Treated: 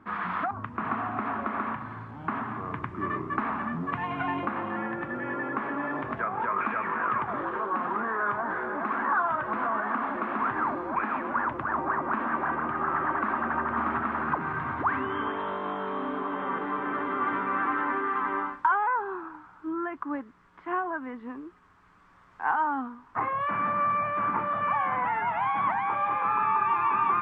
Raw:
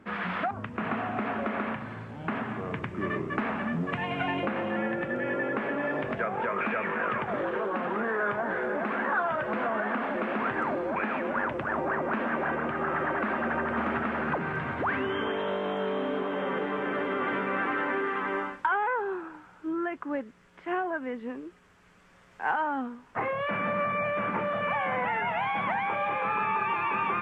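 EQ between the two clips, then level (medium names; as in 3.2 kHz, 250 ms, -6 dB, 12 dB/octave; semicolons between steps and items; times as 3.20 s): FFT filter 110 Hz 0 dB, 200 Hz -5 dB, 290 Hz +1 dB, 520 Hz -9 dB, 1.1 kHz +7 dB, 1.5 kHz 0 dB, 2.8 kHz -8 dB, 4 kHz -5 dB, 7 kHz -10 dB; 0.0 dB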